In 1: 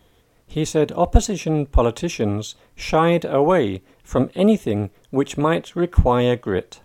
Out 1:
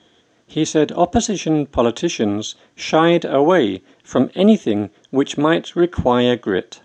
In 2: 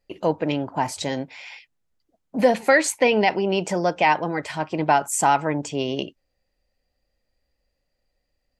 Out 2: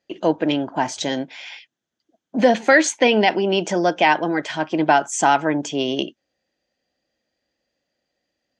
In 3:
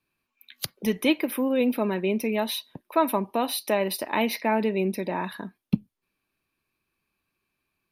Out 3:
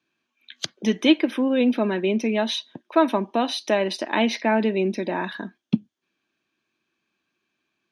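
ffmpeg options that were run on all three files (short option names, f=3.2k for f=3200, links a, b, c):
-af "highpass=140,equalizer=f=230:t=q:w=4:g=5,equalizer=f=330:t=q:w=4:g=7,equalizer=f=670:t=q:w=4:g=4,equalizer=f=1.6k:t=q:w=4:g=7,equalizer=f=3.3k:t=q:w=4:g=9,equalizer=f=6.3k:t=q:w=4:g=8,lowpass=f=7.2k:w=0.5412,lowpass=f=7.2k:w=1.3066"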